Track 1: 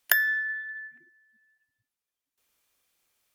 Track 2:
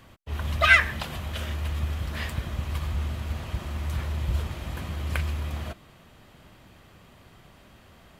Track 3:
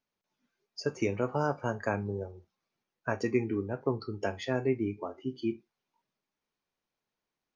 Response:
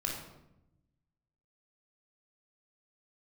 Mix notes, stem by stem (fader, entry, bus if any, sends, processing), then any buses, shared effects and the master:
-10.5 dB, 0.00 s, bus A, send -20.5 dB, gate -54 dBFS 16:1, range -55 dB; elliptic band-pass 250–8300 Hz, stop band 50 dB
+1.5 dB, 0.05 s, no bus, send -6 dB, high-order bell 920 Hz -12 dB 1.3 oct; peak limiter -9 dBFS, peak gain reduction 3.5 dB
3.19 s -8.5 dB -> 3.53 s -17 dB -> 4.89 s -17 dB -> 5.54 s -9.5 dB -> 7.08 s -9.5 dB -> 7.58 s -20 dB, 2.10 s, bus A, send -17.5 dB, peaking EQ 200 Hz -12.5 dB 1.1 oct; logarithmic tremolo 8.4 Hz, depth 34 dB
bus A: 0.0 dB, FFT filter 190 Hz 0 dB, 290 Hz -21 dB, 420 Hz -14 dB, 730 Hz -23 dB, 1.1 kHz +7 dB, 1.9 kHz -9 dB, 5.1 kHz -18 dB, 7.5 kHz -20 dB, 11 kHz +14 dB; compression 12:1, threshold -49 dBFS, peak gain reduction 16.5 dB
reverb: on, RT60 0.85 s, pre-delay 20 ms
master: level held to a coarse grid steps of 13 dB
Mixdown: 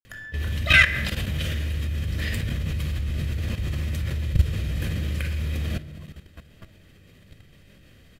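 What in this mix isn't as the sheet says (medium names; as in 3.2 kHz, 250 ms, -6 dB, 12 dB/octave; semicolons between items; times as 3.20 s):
stem 1 -10.5 dB -> -1.5 dB; reverb return +6.5 dB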